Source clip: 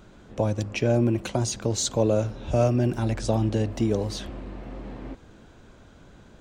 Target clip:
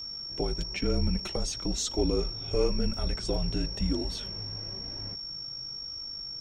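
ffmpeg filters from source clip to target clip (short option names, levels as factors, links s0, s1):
-af "afreqshift=-150,aeval=exprs='val(0)+0.0282*sin(2*PI*5500*n/s)':c=same,flanger=delay=2.9:depth=4.7:regen=-29:speed=1:shape=triangular,volume=0.841"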